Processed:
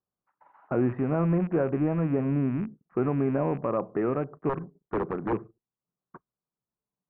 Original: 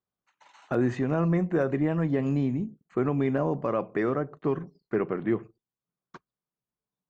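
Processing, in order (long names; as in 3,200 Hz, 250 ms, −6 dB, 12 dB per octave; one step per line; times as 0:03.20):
loose part that buzzes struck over −33 dBFS, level −23 dBFS
0:04.49–0:05.33: wrap-around overflow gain 18.5 dB
noise that follows the level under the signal 32 dB
low-pass filter 1,400 Hz 24 dB per octave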